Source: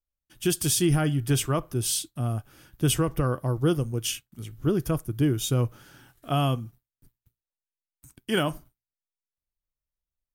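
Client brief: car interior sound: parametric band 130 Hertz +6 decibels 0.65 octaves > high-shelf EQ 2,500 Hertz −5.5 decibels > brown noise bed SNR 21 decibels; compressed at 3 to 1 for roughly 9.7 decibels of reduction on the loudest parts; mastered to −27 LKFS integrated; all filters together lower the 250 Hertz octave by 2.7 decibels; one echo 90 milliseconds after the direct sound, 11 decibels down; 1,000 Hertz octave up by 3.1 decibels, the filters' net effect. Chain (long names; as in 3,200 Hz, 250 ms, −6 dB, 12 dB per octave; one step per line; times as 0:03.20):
parametric band 250 Hz −9 dB
parametric band 1,000 Hz +6 dB
downward compressor 3 to 1, threshold −34 dBFS
parametric band 130 Hz +6 dB 0.65 octaves
high-shelf EQ 2,500 Hz −5.5 dB
single-tap delay 90 ms −11 dB
brown noise bed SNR 21 dB
level +7 dB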